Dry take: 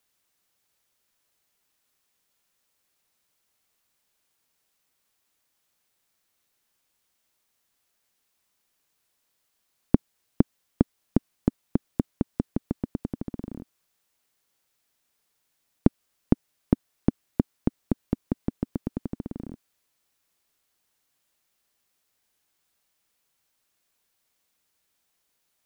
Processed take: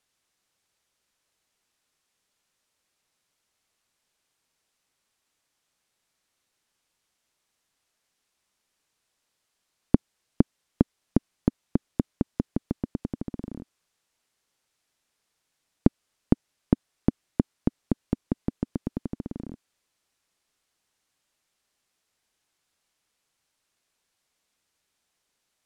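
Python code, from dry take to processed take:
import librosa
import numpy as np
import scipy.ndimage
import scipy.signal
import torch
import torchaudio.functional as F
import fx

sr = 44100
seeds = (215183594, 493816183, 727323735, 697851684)

y = scipy.signal.sosfilt(scipy.signal.butter(2, 9600.0, 'lowpass', fs=sr, output='sos'), x)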